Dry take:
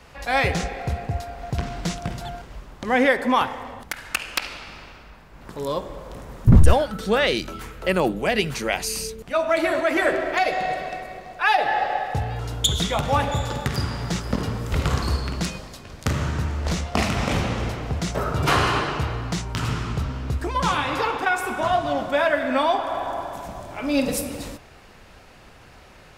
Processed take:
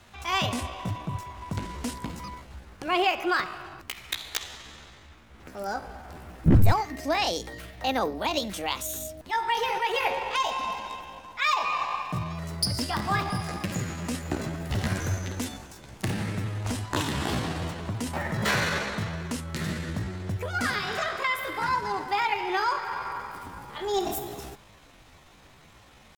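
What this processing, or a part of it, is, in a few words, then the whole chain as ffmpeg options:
chipmunk voice: -af "asetrate=62367,aresample=44100,atempo=0.707107,volume=-5.5dB"

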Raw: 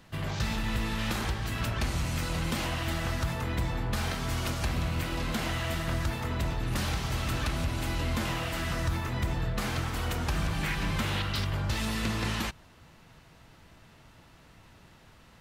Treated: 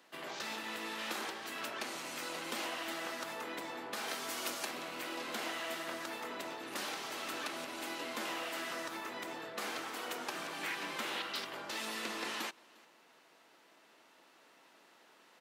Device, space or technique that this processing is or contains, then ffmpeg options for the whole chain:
ducked delay: -filter_complex "[0:a]highpass=frequency=300:width=0.5412,highpass=frequency=300:width=1.3066,asplit=3[link_01][link_02][link_03];[link_02]adelay=352,volume=-4dB[link_04];[link_03]apad=whole_len=695094[link_05];[link_04][link_05]sidechaincompress=threshold=-56dB:ratio=8:attack=44:release=1370[link_06];[link_01][link_06]amix=inputs=2:normalize=0,asettb=1/sr,asplit=3[link_07][link_08][link_09];[link_07]atrim=end=4.084[link_10];[link_08]atrim=start=4.08:end=4.71,asetpts=PTS-STARTPTS,afade=type=in:duration=0.004:curve=qsin,afade=type=out:start_time=0.626:duration=0.004:curve=qsin,highshelf=frequency=5800:gain=7[link_11];[link_09]atrim=start=4.706[link_12];[link_10][link_11]acrossfade=duration=0.004:curve1=hsin:curve2=qsin[link_13];[link_13][link_12]acrossfade=duration=0.004:curve1=qsin:curve2=hsin,volume=-5dB"

